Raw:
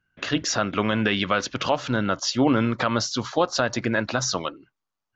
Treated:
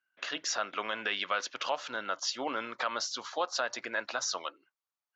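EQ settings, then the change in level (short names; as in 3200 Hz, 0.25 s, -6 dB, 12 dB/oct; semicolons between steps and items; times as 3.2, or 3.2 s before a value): HPF 640 Hz 12 dB/oct; -7.0 dB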